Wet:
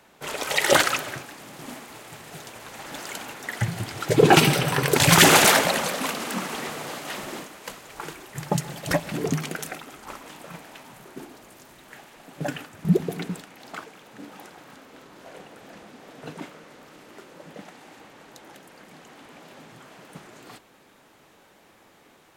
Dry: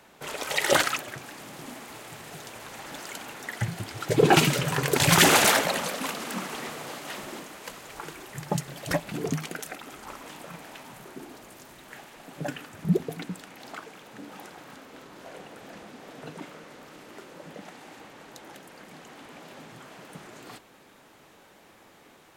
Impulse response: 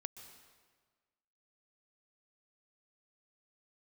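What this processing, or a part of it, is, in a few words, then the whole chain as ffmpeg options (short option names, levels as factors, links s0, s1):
keyed gated reverb: -filter_complex "[0:a]asettb=1/sr,asplit=3[s0][s1][s2];[s0]atrim=end=4.394[s3];[s1]atrim=start=4.39:end=4.89,asetpts=PTS-STARTPTS,afade=t=in:d=0.004:c=qsin,afade=t=out:st=0.496:d=0.004:c=qsin,bandreject=f=6900:w=5.2[s4];[s2]atrim=start=4.886[s5];[s3][s4]acrossfade=d=0.004:c1=hsin:c2=qsin[s6];[s6][s5]acrossfade=d=0.004:c1=qsin:c2=hsin,asplit=3[s7][s8][s9];[1:a]atrim=start_sample=2205[s10];[s8][s10]afir=irnorm=-1:irlink=0[s11];[s9]apad=whole_len=986377[s12];[s11][s12]sidechaingate=range=0.0224:threshold=0.01:ratio=16:detection=peak,volume=1.12[s13];[s7][s13]amix=inputs=2:normalize=0,volume=0.891"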